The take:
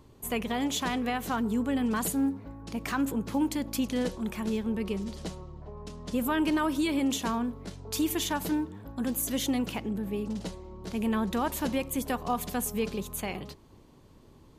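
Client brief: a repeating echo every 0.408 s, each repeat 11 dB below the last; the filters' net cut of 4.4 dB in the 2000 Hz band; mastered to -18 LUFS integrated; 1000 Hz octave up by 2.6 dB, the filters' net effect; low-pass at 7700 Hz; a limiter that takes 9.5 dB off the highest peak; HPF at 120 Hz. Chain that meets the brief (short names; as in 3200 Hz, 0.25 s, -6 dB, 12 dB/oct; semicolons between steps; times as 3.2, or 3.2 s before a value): HPF 120 Hz; LPF 7700 Hz; bell 1000 Hz +5 dB; bell 2000 Hz -8 dB; limiter -26 dBFS; feedback echo 0.408 s, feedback 28%, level -11 dB; gain +17 dB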